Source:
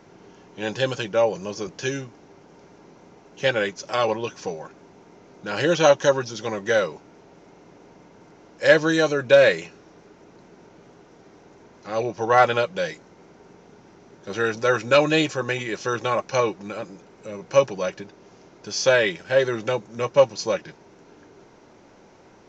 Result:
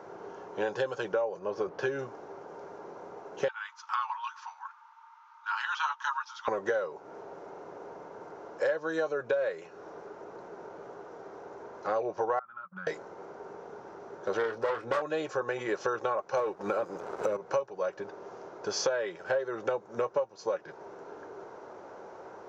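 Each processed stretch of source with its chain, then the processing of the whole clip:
1.39–1.99 s: median filter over 5 samples + distance through air 110 m
3.48–6.48 s: rippled Chebyshev high-pass 870 Hz, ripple 6 dB + treble shelf 4.3 kHz -10.5 dB
12.39–12.87 s: compression 2:1, threshold -30 dBFS + two resonant band-passes 490 Hz, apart 2.8 oct + gate -49 dBFS, range -22 dB
14.37–15.02 s: self-modulated delay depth 0.55 ms + distance through air 110 m + doubling 26 ms -8 dB
16.37–17.37 s: waveshaping leveller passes 2 + three bands compressed up and down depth 40%
whole clip: high-pass 47 Hz; high-order bell 770 Hz +13.5 dB 2.4 oct; compression 12:1, threshold -21 dBFS; trim -6 dB

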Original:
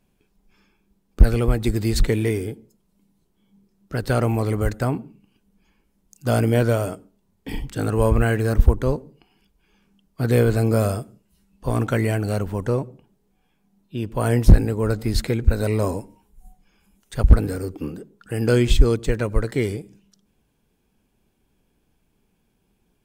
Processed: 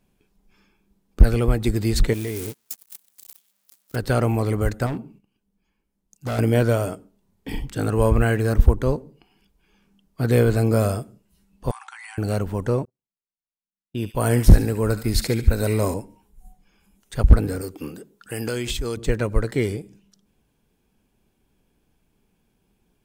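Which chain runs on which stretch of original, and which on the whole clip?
2.13–3.96 s: zero-crossing glitches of -18 dBFS + gate -29 dBFS, range -34 dB + compression 4:1, threshold -25 dBFS
4.86–6.39 s: gate -54 dBFS, range -10 dB + hard clipper -23.5 dBFS
11.71–12.18 s: brick-wall FIR band-pass 750–11000 Hz + compression 10:1, threshold -36 dBFS
12.85–15.94 s: gate -36 dBFS, range -43 dB + treble shelf 7.3 kHz +7.5 dB + feedback echo behind a high-pass 71 ms, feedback 44%, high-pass 1.7 kHz, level -7.5 dB
17.61–18.97 s: tilt EQ +2 dB/octave + compression 4:1, threshold -23 dBFS
whole clip: none

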